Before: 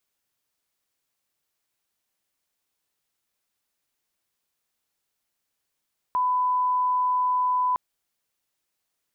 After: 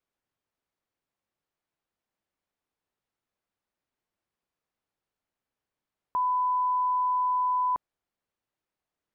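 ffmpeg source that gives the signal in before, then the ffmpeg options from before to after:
-f lavfi -i "sine=frequency=1000:duration=1.61:sample_rate=44100,volume=-1.94dB"
-af "lowpass=frequency=1100:poles=1"

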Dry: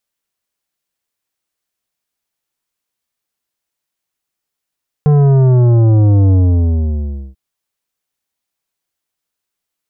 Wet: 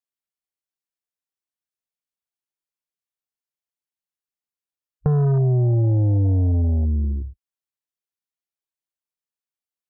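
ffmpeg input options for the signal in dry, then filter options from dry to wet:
-f lavfi -i "aevalsrc='0.422*clip((2.29-t)/1.03,0,1)*tanh(3.55*sin(2*PI*150*2.29/log(65/150)*(exp(log(65/150)*t/2.29)-1)))/tanh(3.55)':duration=2.29:sample_rate=44100"
-af "afwtdn=0.1,acompressor=threshold=-19dB:ratio=4"

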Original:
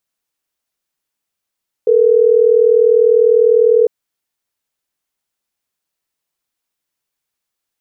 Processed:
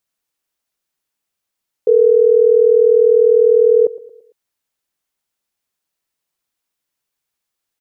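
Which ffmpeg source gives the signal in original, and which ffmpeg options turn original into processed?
-f lavfi -i "aevalsrc='0.316*(sin(2*PI*440*t)+sin(2*PI*480*t))*clip(min(mod(t,6),2-mod(t,6))/0.005,0,1)':duration=3.12:sample_rate=44100"
-af "aecho=1:1:113|226|339|452:0.126|0.0541|0.0233|0.01"

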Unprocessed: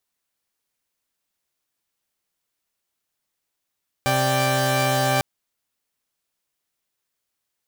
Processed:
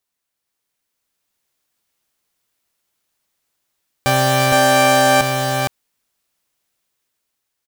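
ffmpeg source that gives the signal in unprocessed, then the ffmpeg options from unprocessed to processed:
-f lavfi -i "aevalsrc='0.0944*((2*mod(130.81*t,1)-1)+(2*mod(587.33*t,1)-1)+(2*mod(783.99*t,1)-1))':duration=1.15:sample_rate=44100"
-filter_complex "[0:a]dynaudnorm=framelen=290:gausssize=7:maxgain=5.5dB,asplit=2[link_01][link_02];[link_02]aecho=0:1:463:0.631[link_03];[link_01][link_03]amix=inputs=2:normalize=0"

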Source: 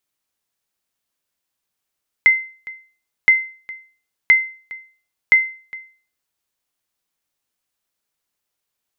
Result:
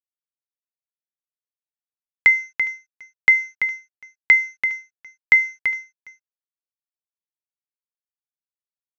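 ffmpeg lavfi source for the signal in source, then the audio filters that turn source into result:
-f lavfi -i "aevalsrc='0.631*(sin(2*PI*2070*mod(t,1.02))*exp(-6.91*mod(t,1.02)/0.4)+0.0891*sin(2*PI*2070*max(mod(t,1.02)-0.41,0))*exp(-6.91*max(mod(t,1.02)-0.41,0)/0.4))':duration=4.08:sample_rate=44100"
-af "aresample=16000,aeval=exprs='sgn(val(0))*max(abs(val(0))-0.00562,0)':channel_layout=same,aresample=44100,aecho=1:1:336:0.376"

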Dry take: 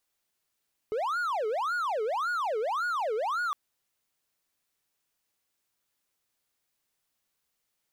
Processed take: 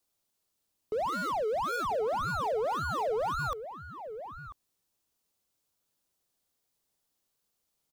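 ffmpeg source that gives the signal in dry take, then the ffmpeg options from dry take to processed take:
-f lavfi -i "aevalsrc='0.0562*(1-4*abs(mod((936.5*t-513.5/(2*PI*1.8)*sin(2*PI*1.8*t))+0.25,1)-0.5))':duration=2.61:sample_rate=44100"
-filter_complex "[0:a]acrossover=split=390|1500|2500[link_01][link_02][link_03][link_04];[link_03]acrusher=samples=42:mix=1:aa=0.000001:lfo=1:lforange=25.2:lforate=0.26[link_05];[link_01][link_02][link_05][link_04]amix=inputs=4:normalize=0,asplit=2[link_06][link_07];[link_07]adelay=991.3,volume=-10dB,highshelf=frequency=4000:gain=-22.3[link_08];[link_06][link_08]amix=inputs=2:normalize=0"

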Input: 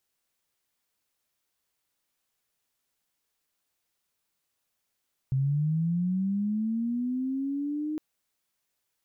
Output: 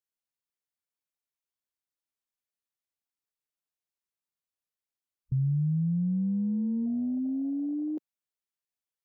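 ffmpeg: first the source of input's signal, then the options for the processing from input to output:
-f lavfi -i "aevalsrc='pow(10,(-22.5-6*t/2.66)/20)*sin(2*PI*(130*t+180*t*t/(2*2.66)))':duration=2.66:sample_rate=44100"
-af "afwtdn=0.0178"

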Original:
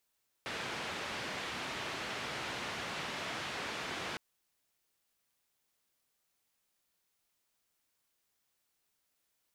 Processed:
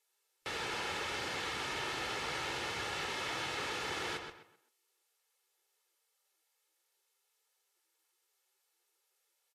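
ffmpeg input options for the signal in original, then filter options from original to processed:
-f lavfi -i "anoisesrc=color=white:duration=3.71:sample_rate=44100:seed=1,highpass=frequency=86,lowpass=frequency=2800,volume=-26.5dB"
-filter_complex "[0:a]aecho=1:1:2.3:0.47,asplit=2[link_01][link_02];[link_02]adelay=129,lowpass=frequency=3900:poles=1,volume=-6dB,asplit=2[link_03][link_04];[link_04]adelay=129,lowpass=frequency=3900:poles=1,volume=0.32,asplit=2[link_05][link_06];[link_06]adelay=129,lowpass=frequency=3900:poles=1,volume=0.32,asplit=2[link_07][link_08];[link_08]adelay=129,lowpass=frequency=3900:poles=1,volume=0.32[link_09];[link_01][link_03][link_05][link_07][link_09]amix=inputs=5:normalize=0" -ar 44100 -c:a libvorbis -b:a 32k

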